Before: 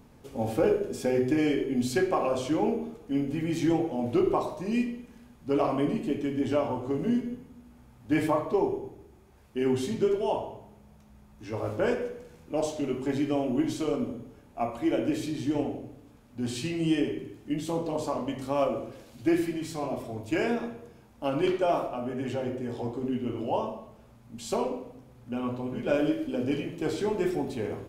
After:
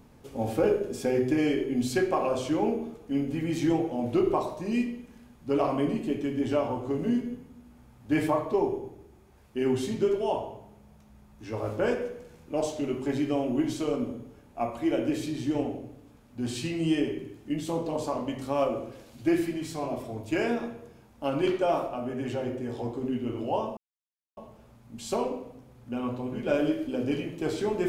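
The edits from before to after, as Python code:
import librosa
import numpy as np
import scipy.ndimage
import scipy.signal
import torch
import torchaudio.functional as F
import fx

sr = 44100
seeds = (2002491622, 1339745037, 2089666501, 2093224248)

y = fx.edit(x, sr, fx.insert_silence(at_s=23.77, length_s=0.6), tone=tone)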